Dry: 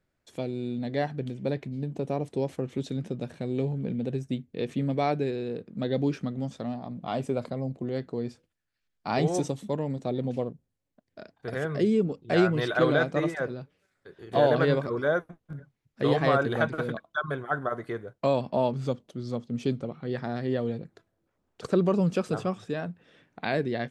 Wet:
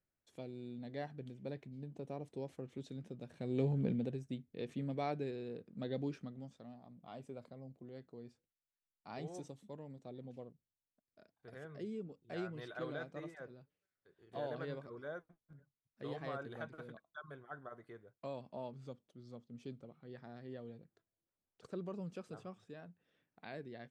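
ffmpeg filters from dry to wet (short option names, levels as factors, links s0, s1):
-af "volume=0.75,afade=t=in:st=3.28:d=0.54:silence=0.237137,afade=t=out:st=3.82:d=0.34:silence=0.334965,afade=t=out:st=5.92:d=0.66:silence=0.398107"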